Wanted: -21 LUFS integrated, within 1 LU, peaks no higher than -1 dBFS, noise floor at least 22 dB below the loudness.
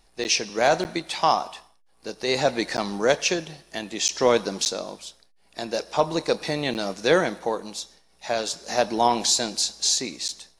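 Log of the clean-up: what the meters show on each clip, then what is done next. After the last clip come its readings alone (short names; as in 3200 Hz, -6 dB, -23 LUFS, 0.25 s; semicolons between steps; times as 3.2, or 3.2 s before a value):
dropouts 7; longest dropout 9.6 ms; loudness -24.0 LUFS; peak -6.0 dBFS; loudness target -21.0 LUFS
-> interpolate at 0.24/0.84/2.77/4.08/4.65/6.74/10.28, 9.6 ms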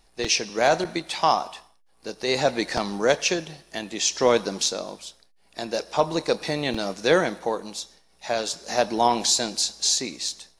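dropouts 0; loudness -24.0 LUFS; peak -6.0 dBFS; loudness target -21.0 LUFS
-> gain +3 dB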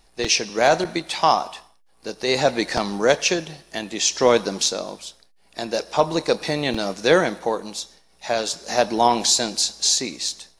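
loudness -21.0 LUFS; peak -3.0 dBFS; noise floor -57 dBFS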